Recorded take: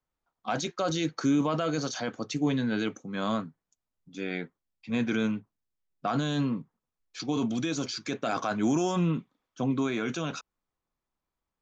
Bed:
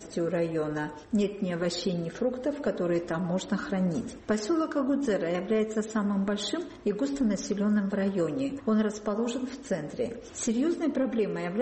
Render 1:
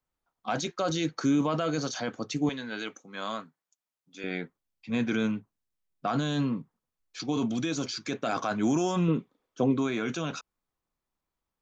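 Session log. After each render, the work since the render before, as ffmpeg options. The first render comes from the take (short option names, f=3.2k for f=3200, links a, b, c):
-filter_complex "[0:a]asettb=1/sr,asplit=3[a][b][c];[a]atrim=end=2.494[d];[b]atrim=start=2.49:end=4.24,asetpts=PTS-STARTPTS,afade=t=in:d=0.004:c=qsin,afade=t=out:st=1.746:d=0.004:c=qsin,highpass=f=810:p=1[e];[c]atrim=start=4.236[f];[d][e]acrossfade=d=0.004:c1=hsin:c2=qsin[g];[g][f]acrossfade=d=0.004:c1=qsin:c2=hsin,asettb=1/sr,asplit=3[h][i][j];[h]atrim=end=9.084[k];[i]atrim=start=9.08:end=9.77,asetpts=PTS-STARTPTS,afade=t=in:d=0.004:c=qsin,afade=t=out:st=0.686:d=0.004:c=qsin,equalizer=f=440:w=1.5:g=9.5[l];[j]atrim=start=9.766[m];[k][l]acrossfade=d=0.004:c1=hsin:c2=qsin[n];[n][m]acrossfade=d=0.004:c1=qsin:c2=hsin"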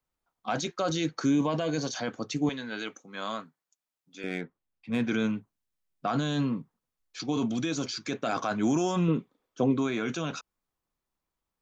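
-filter_complex "[0:a]asettb=1/sr,asplit=3[a][b][c];[a]atrim=end=1.304[d];[b]atrim=start=1.3:end=1.95,asetpts=PTS-STARTPTS,afade=t=in:d=0.004:c=qsin,afade=t=out:st=0.646:d=0.004:c=qsin,asuperstop=centerf=1300:order=4:qfactor=5.8[e];[c]atrim=start=1.946[f];[d][e]acrossfade=d=0.004:c1=hsin:c2=qsin[g];[g][f]acrossfade=d=0.004:c1=qsin:c2=hsin,asettb=1/sr,asplit=3[h][i][j];[h]atrim=end=4.224[k];[i]atrim=start=4.22:end=5.04,asetpts=PTS-STARTPTS,afade=t=in:d=0.004:c=qsin,afade=t=out:st=0.816:d=0.004:c=qsin,adynamicsmooth=sensitivity=6.5:basefreq=3.1k[l];[j]atrim=start=5.036[m];[k][l]acrossfade=d=0.004:c1=hsin:c2=qsin[n];[n][m]acrossfade=d=0.004:c1=qsin:c2=hsin"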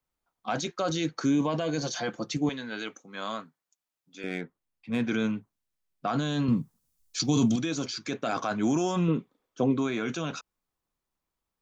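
-filter_complex "[0:a]asettb=1/sr,asplit=3[a][b][c];[a]atrim=end=1.814[d];[b]atrim=start=1.81:end=2.37,asetpts=PTS-STARTPTS,afade=t=in:d=0.004:c=qsin,afade=t=out:st=0.556:d=0.004:c=qsin,aecho=1:1:5.8:0.65,atrim=end_sample=24696[e];[c]atrim=start=2.366[f];[d][e]acrossfade=d=0.004:c1=hsin:c2=qsin[g];[g][f]acrossfade=d=0.004:c1=qsin:c2=hsin,asettb=1/sr,asplit=3[h][i][j];[h]atrim=end=6.484[k];[i]atrim=start=6.48:end=7.56,asetpts=PTS-STARTPTS,afade=t=in:d=0.004:c=qsin,afade=t=out:st=1.076:d=0.004:c=qsin,bass=f=250:g=11,treble=f=4k:g=15[l];[j]atrim=start=7.556[m];[k][l]acrossfade=d=0.004:c1=hsin:c2=qsin[n];[n][m]acrossfade=d=0.004:c1=qsin:c2=hsin"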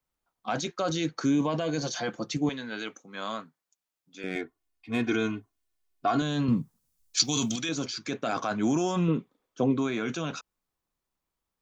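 -filter_complex "[0:a]asettb=1/sr,asplit=3[a][b][c];[a]atrim=end=4.354[d];[b]atrim=start=4.35:end=6.22,asetpts=PTS-STARTPTS,afade=t=in:d=0.004:c=qsin,afade=t=out:st=1.866:d=0.004:c=qsin,aecho=1:1:2.8:0.88,atrim=end_sample=82467[e];[c]atrim=start=6.216[f];[d][e]acrossfade=d=0.004:c1=hsin:c2=qsin[g];[g][f]acrossfade=d=0.004:c1=qsin:c2=hsin,asettb=1/sr,asplit=3[h][i][j];[h]atrim=end=7.174[k];[i]atrim=start=7.17:end=7.69,asetpts=PTS-STARTPTS,afade=t=in:d=0.004:c=qsin,afade=t=out:st=0.516:d=0.004:c=qsin,tiltshelf=f=1.1k:g=-7.5[l];[j]atrim=start=7.686[m];[k][l]acrossfade=d=0.004:c1=hsin:c2=qsin[n];[n][m]acrossfade=d=0.004:c1=qsin:c2=hsin"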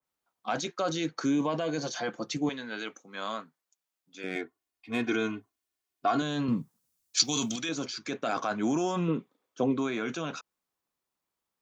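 -af "highpass=f=230:p=1,adynamicequalizer=threshold=0.00794:dfrequency=2500:dqfactor=0.7:tfrequency=2500:tqfactor=0.7:attack=5:release=100:ratio=0.375:range=2:mode=cutabove:tftype=highshelf"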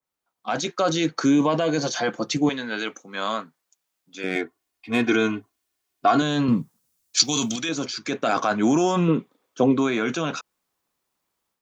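-af "dynaudnorm=f=360:g=3:m=8.5dB"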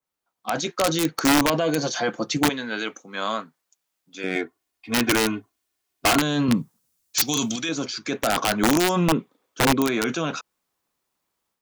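-af "aeval=exprs='(mod(3.98*val(0)+1,2)-1)/3.98':c=same"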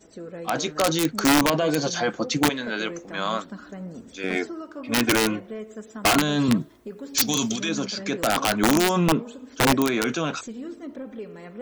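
-filter_complex "[1:a]volume=-9dB[a];[0:a][a]amix=inputs=2:normalize=0"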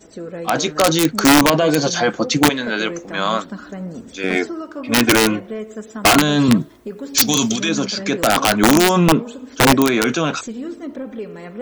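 -af "volume=7dB"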